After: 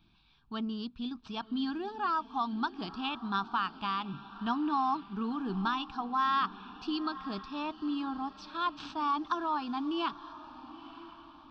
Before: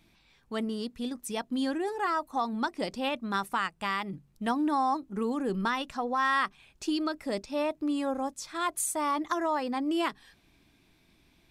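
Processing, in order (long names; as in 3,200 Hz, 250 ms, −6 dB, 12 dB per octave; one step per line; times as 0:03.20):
running median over 5 samples
downsampling to 16,000 Hz
phaser with its sweep stopped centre 2,000 Hz, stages 6
on a send: feedback delay with all-pass diffusion 953 ms, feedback 44%, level −15.5 dB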